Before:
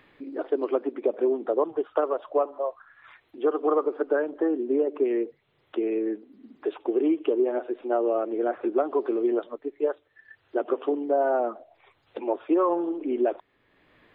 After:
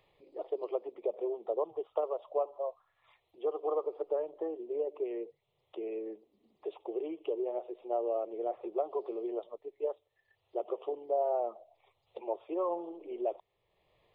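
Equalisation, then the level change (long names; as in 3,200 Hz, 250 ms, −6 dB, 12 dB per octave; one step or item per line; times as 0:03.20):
phaser with its sweep stopped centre 640 Hz, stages 4
−6.5 dB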